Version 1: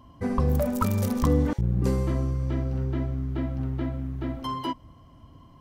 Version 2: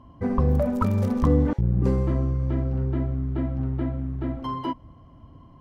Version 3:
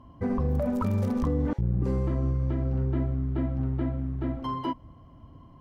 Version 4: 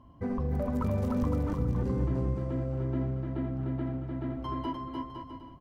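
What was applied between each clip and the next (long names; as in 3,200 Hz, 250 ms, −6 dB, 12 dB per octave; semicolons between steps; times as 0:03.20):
low-pass filter 1,400 Hz 6 dB per octave; level +2.5 dB
brickwall limiter −17.5 dBFS, peak gain reduction 7.5 dB; level −1.5 dB
bouncing-ball delay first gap 300 ms, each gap 0.7×, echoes 5; level −4.5 dB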